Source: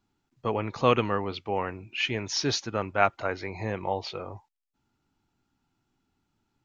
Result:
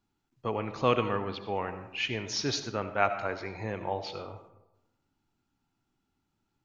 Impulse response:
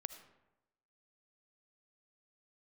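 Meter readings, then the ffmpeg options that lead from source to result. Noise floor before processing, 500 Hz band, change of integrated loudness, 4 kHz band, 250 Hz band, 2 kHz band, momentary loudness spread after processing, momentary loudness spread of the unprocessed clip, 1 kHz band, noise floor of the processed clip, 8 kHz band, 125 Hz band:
-79 dBFS, -3.0 dB, -3.0 dB, -3.0 dB, -3.0 dB, -3.0 dB, 11 LU, 11 LU, -3.0 dB, -80 dBFS, no reading, -3.5 dB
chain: -filter_complex "[1:a]atrim=start_sample=2205[s0];[0:a][s0]afir=irnorm=-1:irlink=0"

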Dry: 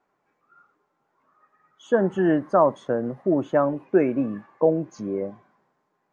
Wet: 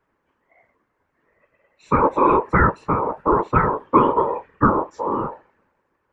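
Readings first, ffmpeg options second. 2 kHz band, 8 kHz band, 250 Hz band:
+8.0 dB, no reading, +0.5 dB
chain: -af "lowshelf=f=460:g=11,aeval=exprs='val(0)*sin(2*PI*710*n/s)':c=same,afftfilt=real='hypot(re,im)*cos(2*PI*random(0))':imag='hypot(re,im)*sin(2*PI*random(1))':win_size=512:overlap=0.75,volume=2.11"

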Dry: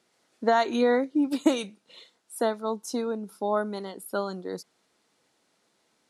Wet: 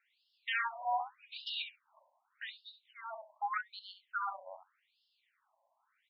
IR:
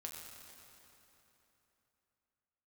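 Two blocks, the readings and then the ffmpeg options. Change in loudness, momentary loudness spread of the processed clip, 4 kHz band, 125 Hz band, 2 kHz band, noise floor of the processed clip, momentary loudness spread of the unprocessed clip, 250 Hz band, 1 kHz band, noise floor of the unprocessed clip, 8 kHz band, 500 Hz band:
-12.0 dB, 15 LU, -3.5 dB, no reading, -3.5 dB, -80 dBFS, 14 LU, under -40 dB, -7.0 dB, -71 dBFS, under -35 dB, -24.5 dB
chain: -filter_complex "[0:a]highshelf=f=6800:g=-6,asplit=2[s0][s1];[s1]adelay=67,lowpass=f=2600:p=1,volume=0.501,asplit=2[s2][s3];[s3]adelay=67,lowpass=f=2600:p=1,volume=0.16,asplit=2[s4][s5];[s5]adelay=67,lowpass=f=2600:p=1,volume=0.16[s6];[s2][s4][s6]amix=inputs=3:normalize=0[s7];[s0][s7]amix=inputs=2:normalize=0,aeval=exprs='0.168*(abs(mod(val(0)/0.168+3,4)-2)-1)':c=same,afftfilt=real='re*between(b*sr/1024,740*pow(3900/740,0.5+0.5*sin(2*PI*0.84*pts/sr))/1.41,740*pow(3900/740,0.5+0.5*sin(2*PI*0.84*pts/sr))*1.41)':imag='im*between(b*sr/1024,740*pow(3900/740,0.5+0.5*sin(2*PI*0.84*pts/sr))/1.41,740*pow(3900/740,0.5+0.5*sin(2*PI*0.84*pts/sr))*1.41)':win_size=1024:overlap=0.75"

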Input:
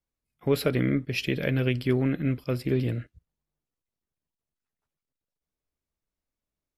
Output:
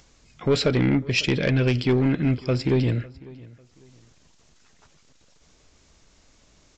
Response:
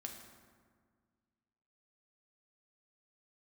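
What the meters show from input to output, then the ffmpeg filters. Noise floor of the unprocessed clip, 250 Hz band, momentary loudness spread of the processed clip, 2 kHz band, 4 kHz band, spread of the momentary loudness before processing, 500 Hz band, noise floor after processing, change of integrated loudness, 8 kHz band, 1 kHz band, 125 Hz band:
under -85 dBFS, +4.5 dB, 6 LU, +5.0 dB, +8.0 dB, 5 LU, +4.0 dB, -59 dBFS, +4.5 dB, no reading, +6.0 dB, +5.0 dB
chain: -filter_complex "[0:a]highshelf=f=5100:g=9,acompressor=mode=upward:threshold=0.01:ratio=2.5,aresample=16000,asoftclip=type=tanh:threshold=0.112,aresample=44100,asplit=2[s0][s1];[s1]adelay=549,lowpass=f=4900:p=1,volume=0.0841,asplit=2[s2][s3];[s3]adelay=549,lowpass=f=4900:p=1,volume=0.29[s4];[s0][s2][s4]amix=inputs=3:normalize=0,volume=2.11"

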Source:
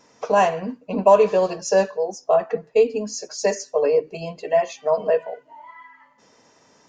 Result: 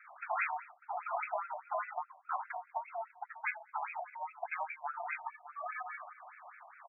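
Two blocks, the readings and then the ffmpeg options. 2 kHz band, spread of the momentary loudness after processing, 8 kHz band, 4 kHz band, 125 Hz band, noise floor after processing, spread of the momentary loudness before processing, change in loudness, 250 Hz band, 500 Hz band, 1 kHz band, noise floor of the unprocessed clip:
-6.5 dB, 9 LU, under -40 dB, under -40 dB, under -40 dB, -64 dBFS, 13 LU, -19.0 dB, under -40 dB, -28.0 dB, -12.5 dB, -58 dBFS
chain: -filter_complex "[0:a]afftfilt=real='re*lt(hypot(re,im),0.794)':imag='im*lt(hypot(re,im),0.794)':win_size=1024:overlap=0.75,acrossover=split=7200[s0][s1];[s1]acompressor=threshold=0.00224:ratio=4:attack=1:release=60[s2];[s0][s2]amix=inputs=2:normalize=0,aecho=1:1:593|1186:0.0841|0.021,aeval=exprs='val(0)*sin(2*PI*260*n/s)':c=same,acrossover=split=160|3000[s3][s4][s5];[s4]acompressor=threshold=0.00447:ratio=3[s6];[s3][s6][s5]amix=inputs=3:normalize=0,afftfilt=real='re*between(b*sr/1024,810*pow(1900/810,0.5+0.5*sin(2*PI*4.9*pts/sr))/1.41,810*pow(1900/810,0.5+0.5*sin(2*PI*4.9*pts/sr))*1.41)':imag='im*between(b*sr/1024,810*pow(1900/810,0.5+0.5*sin(2*PI*4.9*pts/sr))/1.41,810*pow(1900/810,0.5+0.5*sin(2*PI*4.9*pts/sr))*1.41)':win_size=1024:overlap=0.75,volume=3.76"

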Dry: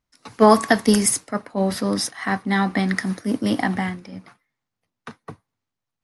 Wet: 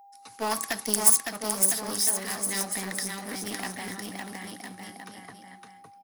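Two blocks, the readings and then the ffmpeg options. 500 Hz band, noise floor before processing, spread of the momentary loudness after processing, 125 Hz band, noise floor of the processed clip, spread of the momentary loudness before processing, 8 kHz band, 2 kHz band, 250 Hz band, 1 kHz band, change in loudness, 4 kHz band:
-14.5 dB, -84 dBFS, 21 LU, -16.0 dB, -53 dBFS, 13 LU, +3.0 dB, -9.0 dB, -16.5 dB, -11.5 dB, -5.0 dB, -3.5 dB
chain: -filter_complex "[0:a]asplit=2[s0][s1];[s1]aecho=0:1:560|1008|1366|1653|1882:0.631|0.398|0.251|0.158|0.1[s2];[s0][s2]amix=inputs=2:normalize=0,aeval=exprs='val(0)+0.0126*sin(2*PI*800*n/s)':c=same,lowshelf=f=160:g=10,aeval=exprs='clip(val(0),-1,0.0944)':c=same,aemphasis=mode=production:type=riaa,volume=0.266"

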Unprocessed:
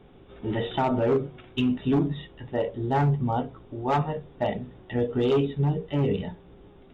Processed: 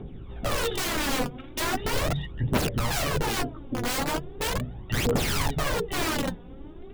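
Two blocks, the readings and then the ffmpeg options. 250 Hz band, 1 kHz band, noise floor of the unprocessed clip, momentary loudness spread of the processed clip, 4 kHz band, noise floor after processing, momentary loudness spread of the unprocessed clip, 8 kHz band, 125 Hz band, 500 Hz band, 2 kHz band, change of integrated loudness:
-4.5 dB, -1.0 dB, -52 dBFS, 7 LU, +9.5 dB, -42 dBFS, 10 LU, no reading, -3.0 dB, -4.0 dB, +9.0 dB, -1.0 dB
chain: -af "aeval=exprs='(mod(21.1*val(0)+1,2)-1)/21.1':c=same,aphaser=in_gain=1:out_gain=1:delay=4.2:decay=0.63:speed=0.39:type=triangular,lowshelf=f=380:g=8.5"

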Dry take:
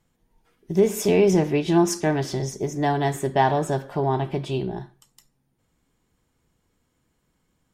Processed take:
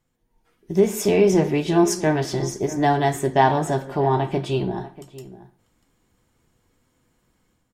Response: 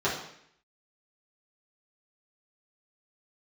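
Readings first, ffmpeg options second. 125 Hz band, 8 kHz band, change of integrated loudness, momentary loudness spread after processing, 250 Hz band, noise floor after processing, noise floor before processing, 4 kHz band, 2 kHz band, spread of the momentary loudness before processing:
+1.0 dB, +2.0 dB, +2.0 dB, 8 LU, +1.5 dB, -68 dBFS, -72 dBFS, +2.0 dB, +2.5 dB, 9 LU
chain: -filter_complex "[0:a]dynaudnorm=f=300:g=3:m=2.66,flanger=delay=7.6:depth=2.5:regen=-63:speed=0.58:shape=sinusoidal,asplit=2[s0][s1];[s1]adelay=641.4,volume=0.158,highshelf=f=4000:g=-14.4[s2];[s0][s2]amix=inputs=2:normalize=0,asplit=2[s3][s4];[1:a]atrim=start_sample=2205,asetrate=52920,aresample=44100[s5];[s4][s5]afir=irnorm=-1:irlink=0,volume=0.0473[s6];[s3][s6]amix=inputs=2:normalize=0"

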